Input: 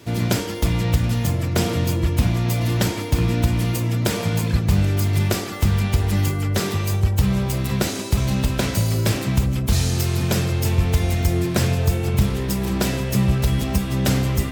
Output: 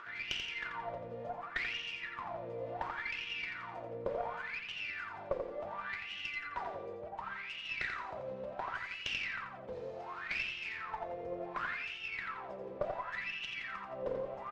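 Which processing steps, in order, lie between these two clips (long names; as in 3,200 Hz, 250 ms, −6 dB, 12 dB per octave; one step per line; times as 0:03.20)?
low-pass filter 5,700 Hz 12 dB per octave
parametric band 1,700 Hz +7 dB 2.3 octaves
upward compression, threshold −19 dBFS
LFO wah 0.69 Hz 490–2,900 Hz, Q 15
tube saturation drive 23 dB, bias 0.75
repeating echo 86 ms, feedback 35%, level −6 dB
level +3.5 dB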